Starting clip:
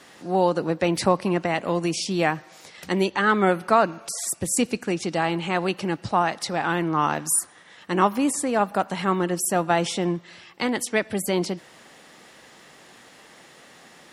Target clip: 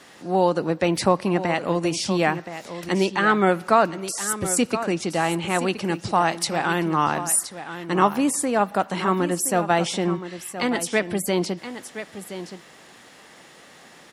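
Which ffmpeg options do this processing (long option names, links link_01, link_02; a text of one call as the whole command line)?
ffmpeg -i in.wav -filter_complex "[0:a]asettb=1/sr,asplit=3[link_01][link_02][link_03];[link_01]atrim=end=5.844[link_04];[link_02]atrim=start=5.84:end=7.04,asetpts=PTS-STARTPTS,afade=type=in:duration=0.004:curve=qsin,afade=type=out:start_time=1.196:duration=0.004:curve=qsin,highshelf=frequency=7100:gain=11[link_05];[link_03]atrim=start=7.036[link_06];[link_04][link_05]acrossfade=duration=0.004:curve1=hsin:curve2=qsin[link_07];[link_07][link_06]acrossfade=duration=0.004:curve1=qsin:curve2=hsin,aecho=1:1:1021:0.266,volume=1dB" out.wav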